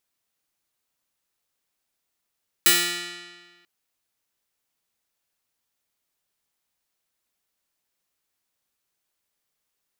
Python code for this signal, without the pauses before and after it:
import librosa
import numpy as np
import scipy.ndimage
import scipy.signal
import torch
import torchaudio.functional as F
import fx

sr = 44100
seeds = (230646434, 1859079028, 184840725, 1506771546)

y = fx.pluck(sr, length_s=0.99, note=53, decay_s=1.53, pick=0.33, brightness='bright')